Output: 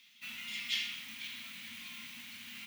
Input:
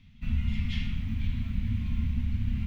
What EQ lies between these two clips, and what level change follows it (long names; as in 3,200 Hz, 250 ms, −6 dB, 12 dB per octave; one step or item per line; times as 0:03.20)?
high-pass filter 300 Hz 12 dB per octave
first difference
+14.5 dB